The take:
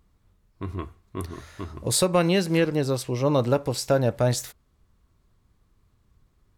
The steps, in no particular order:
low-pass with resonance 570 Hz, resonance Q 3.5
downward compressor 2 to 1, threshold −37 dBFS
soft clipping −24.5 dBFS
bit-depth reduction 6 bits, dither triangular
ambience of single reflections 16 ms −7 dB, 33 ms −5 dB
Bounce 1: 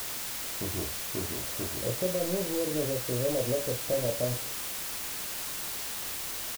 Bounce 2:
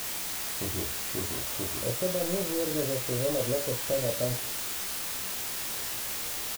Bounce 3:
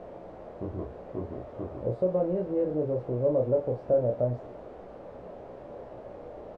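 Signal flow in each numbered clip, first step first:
soft clipping, then low-pass with resonance, then downward compressor, then ambience of single reflections, then bit-depth reduction
soft clipping, then low-pass with resonance, then downward compressor, then bit-depth reduction, then ambience of single reflections
downward compressor, then bit-depth reduction, then ambience of single reflections, then soft clipping, then low-pass with resonance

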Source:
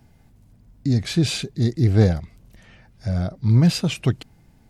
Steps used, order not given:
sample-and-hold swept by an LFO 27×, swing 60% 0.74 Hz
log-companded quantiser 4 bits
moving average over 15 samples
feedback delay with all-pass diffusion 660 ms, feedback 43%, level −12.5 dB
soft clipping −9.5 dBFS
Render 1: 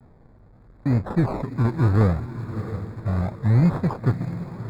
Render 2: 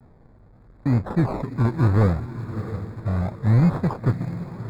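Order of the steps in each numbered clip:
sample-and-hold swept by an LFO, then feedback delay with all-pass diffusion, then log-companded quantiser, then soft clipping, then moving average
sample-and-hold swept by an LFO, then feedback delay with all-pass diffusion, then soft clipping, then log-companded quantiser, then moving average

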